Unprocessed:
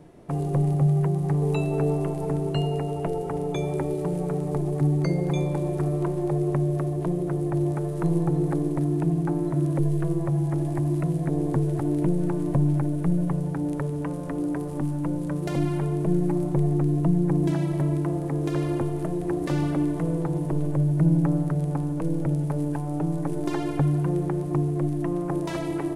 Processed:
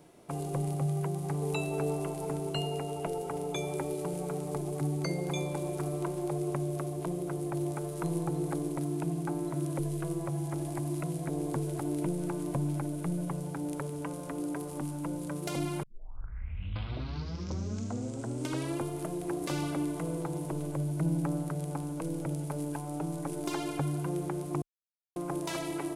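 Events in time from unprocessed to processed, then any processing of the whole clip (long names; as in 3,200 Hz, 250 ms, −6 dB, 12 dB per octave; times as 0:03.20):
0:15.83: tape start 3.00 s
0:24.62–0:25.16: silence
whole clip: spectral tilt +2.5 dB per octave; notch filter 1,800 Hz, Q 8.4; level −3.5 dB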